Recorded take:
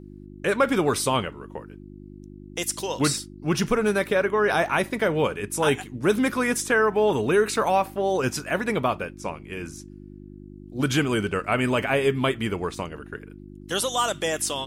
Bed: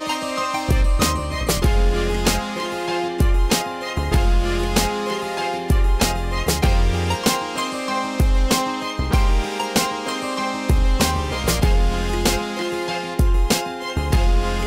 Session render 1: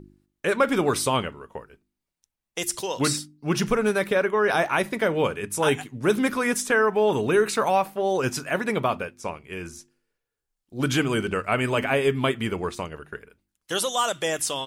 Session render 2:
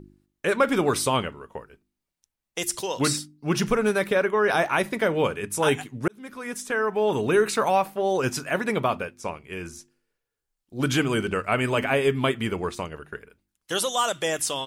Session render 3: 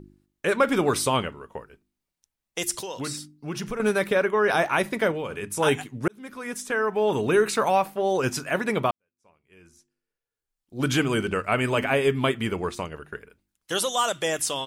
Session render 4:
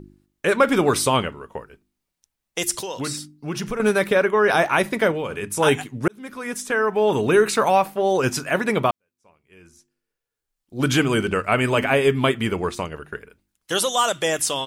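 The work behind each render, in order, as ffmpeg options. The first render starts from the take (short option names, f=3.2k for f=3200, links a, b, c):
-af "bandreject=f=50:t=h:w=4,bandreject=f=100:t=h:w=4,bandreject=f=150:t=h:w=4,bandreject=f=200:t=h:w=4,bandreject=f=250:t=h:w=4,bandreject=f=300:t=h:w=4,bandreject=f=350:t=h:w=4"
-filter_complex "[0:a]asplit=2[a][b];[a]atrim=end=6.08,asetpts=PTS-STARTPTS,afade=t=out:st=6.076:d=0.004:c=hsin[c];[b]atrim=start=6.08,asetpts=PTS-STARTPTS,afade=t=in:d=1.22[d];[c][d]concat=n=2:v=0:a=1"
-filter_complex "[0:a]asettb=1/sr,asplit=3[a][b][c];[a]atrim=end=2.824[d];[b]atrim=start=2.82:end=3.8,asetpts=PTS-STARTPTS,afade=t=in:d=0.004:c=qsin,afade=t=out:st=0.976:d=0.004:c=qsin,acompressor=threshold=-34dB:ratio=2:attack=3.2:release=140:knee=1:detection=peak[e];[c]atrim=start=3.796[f];[d][e]acrossfade=d=0.004:c1=hsin:c2=qsin[g];[g][f]acrossfade=d=0.004:c1=qsin:c2=hsin,asettb=1/sr,asplit=3[h][i][j];[h]atrim=end=5.114[k];[i]atrim=start=5.11:end=5.57,asetpts=PTS-STARTPTS,afade=t=in:d=0.004:c=qsin,afade=t=out:st=0.456:d=0.004:c=qsin,acompressor=threshold=-27dB:ratio=6:attack=3.2:release=140:knee=1:detection=peak[l];[j]atrim=start=5.566[m];[k][l]acrossfade=d=0.004:c1=hsin:c2=qsin[n];[n][m]acrossfade=d=0.004:c1=qsin:c2=hsin,asplit=2[o][p];[o]atrim=end=8.91,asetpts=PTS-STARTPTS,afade=t=out:st=8.906:d=0.004:c=hsin[q];[p]atrim=start=8.91,asetpts=PTS-STARTPTS,afade=t=in:d=1.99:c=qua[r];[q][r]concat=n=2:v=0:a=1"
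-af "volume=4dB"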